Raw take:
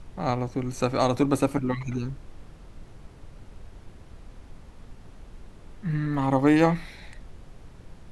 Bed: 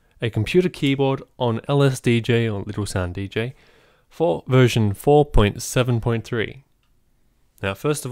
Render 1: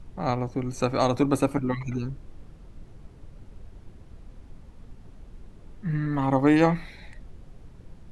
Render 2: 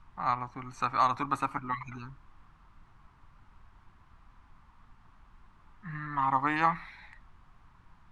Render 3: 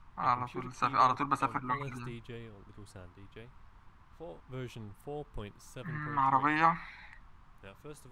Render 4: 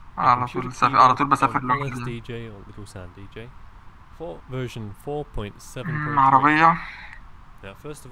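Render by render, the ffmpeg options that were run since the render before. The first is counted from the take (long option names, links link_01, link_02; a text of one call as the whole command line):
ffmpeg -i in.wav -af "afftdn=noise_reduction=6:noise_floor=-49" out.wav
ffmpeg -i in.wav -af "lowpass=frequency=1700:poles=1,lowshelf=frequency=730:width_type=q:width=3:gain=-13" out.wav
ffmpeg -i in.wav -i bed.wav -filter_complex "[1:a]volume=-27dB[link_01];[0:a][link_01]amix=inputs=2:normalize=0" out.wav
ffmpeg -i in.wav -af "volume=12dB,alimiter=limit=-2dB:level=0:latency=1" out.wav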